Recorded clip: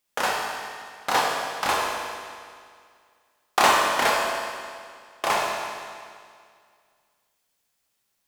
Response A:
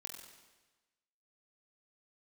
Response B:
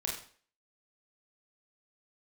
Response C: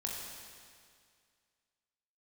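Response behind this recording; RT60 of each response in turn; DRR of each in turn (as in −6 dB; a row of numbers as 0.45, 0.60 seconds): C; 1.2, 0.45, 2.1 seconds; 2.0, −2.5, −2.5 decibels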